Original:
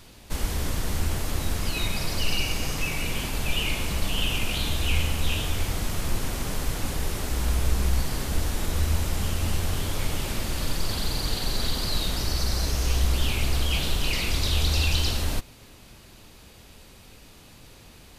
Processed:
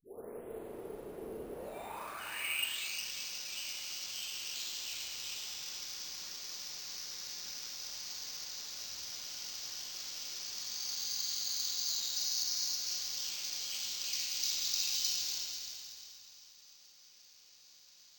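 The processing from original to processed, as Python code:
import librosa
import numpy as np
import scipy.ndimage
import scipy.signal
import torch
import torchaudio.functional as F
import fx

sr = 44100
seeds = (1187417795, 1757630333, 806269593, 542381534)

p1 = fx.tape_start_head(x, sr, length_s=1.9)
p2 = fx.rev_schroeder(p1, sr, rt60_s=2.6, comb_ms=26, drr_db=0.0)
p3 = fx.filter_sweep_bandpass(p2, sr, from_hz=430.0, to_hz=5100.0, start_s=1.49, end_s=3.01, q=5.7)
p4 = p3 + fx.echo_feedback(p3, sr, ms=357, feedback_pct=33, wet_db=-9.0, dry=0)
y = np.repeat(p4[::4], 4)[:len(p4)]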